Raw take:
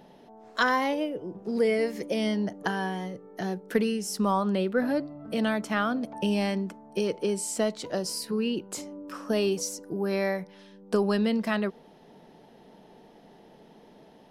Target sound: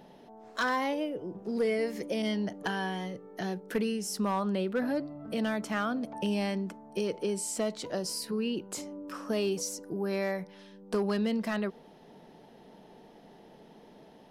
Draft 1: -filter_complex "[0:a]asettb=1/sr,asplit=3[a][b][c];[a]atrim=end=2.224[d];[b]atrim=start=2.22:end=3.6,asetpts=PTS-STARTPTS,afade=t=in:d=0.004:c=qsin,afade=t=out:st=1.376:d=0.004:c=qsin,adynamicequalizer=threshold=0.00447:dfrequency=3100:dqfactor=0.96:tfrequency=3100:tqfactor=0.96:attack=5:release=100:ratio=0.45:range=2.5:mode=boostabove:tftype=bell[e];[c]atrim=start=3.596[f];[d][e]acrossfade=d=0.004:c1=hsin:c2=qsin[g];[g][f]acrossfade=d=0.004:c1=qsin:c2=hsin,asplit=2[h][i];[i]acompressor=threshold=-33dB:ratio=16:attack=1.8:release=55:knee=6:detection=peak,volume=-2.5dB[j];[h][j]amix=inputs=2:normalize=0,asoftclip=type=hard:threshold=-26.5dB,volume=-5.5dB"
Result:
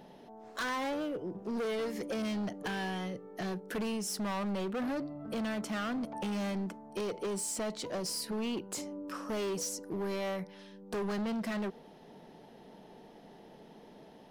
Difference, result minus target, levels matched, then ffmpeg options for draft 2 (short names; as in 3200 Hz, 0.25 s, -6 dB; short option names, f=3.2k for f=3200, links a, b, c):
hard clip: distortion +15 dB
-filter_complex "[0:a]asettb=1/sr,asplit=3[a][b][c];[a]atrim=end=2.224[d];[b]atrim=start=2.22:end=3.6,asetpts=PTS-STARTPTS,afade=t=in:d=0.004:c=qsin,afade=t=out:st=1.376:d=0.004:c=qsin,adynamicequalizer=threshold=0.00447:dfrequency=3100:dqfactor=0.96:tfrequency=3100:tqfactor=0.96:attack=5:release=100:ratio=0.45:range=2.5:mode=boostabove:tftype=bell[e];[c]atrim=start=3.596[f];[d][e]acrossfade=d=0.004:c1=hsin:c2=qsin[g];[g][f]acrossfade=d=0.004:c1=qsin:c2=hsin,asplit=2[h][i];[i]acompressor=threshold=-33dB:ratio=16:attack=1.8:release=55:knee=6:detection=peak,volume=-2.5dB[j];[h][j]amix=inputs=2:normalize=0,asoftclip=type=hard:threshold=-16.5dB,volume=-5.5dB"